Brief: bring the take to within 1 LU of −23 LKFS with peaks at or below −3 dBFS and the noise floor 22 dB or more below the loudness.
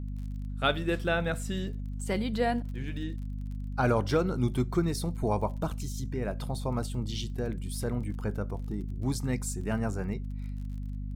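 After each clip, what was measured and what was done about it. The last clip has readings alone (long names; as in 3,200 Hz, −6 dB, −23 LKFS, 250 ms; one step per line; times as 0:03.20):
crackle rate 28 per second; mains hum 50 Hz; hum harmonics up to 250 Hz; level of the hum −33 dBFS; integrated loudness −32.0 LKFS; sample peak −13.5 dBFS; target loudness −23.0 LKFS
→ click removal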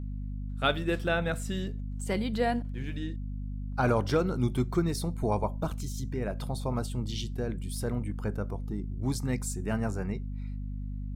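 crackle rate 0.36 per second; mains hum 50 Hz; hum harmonics up to 250 Hz; level of the hum −33 dBFS
→ hum removal 50 Hz, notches 5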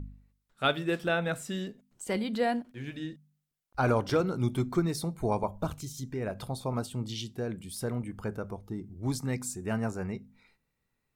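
mains hum none found; integrated loudness −32.5 LKFS; sample peak −13.5 dBFS; target loudness −23.0 LKFS
→ level +9.5 dB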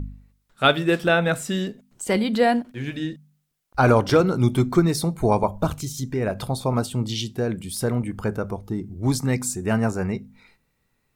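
integrated loudness −23.0 LKFS; sample peak −4.0 dBFS; background noise floor −71 dBFS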